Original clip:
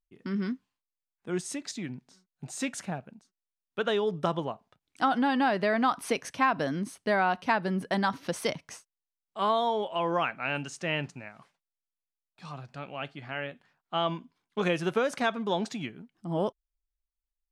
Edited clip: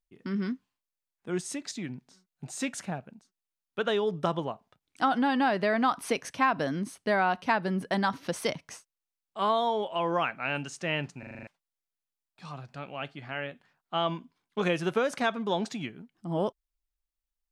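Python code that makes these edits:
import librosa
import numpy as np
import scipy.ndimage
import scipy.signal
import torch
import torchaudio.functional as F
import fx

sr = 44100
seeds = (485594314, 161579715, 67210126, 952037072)

y = fx.edit(x, sr, fx.stutter_over(start_s=11.19, slice_s=0.04, count=7), tone=tone)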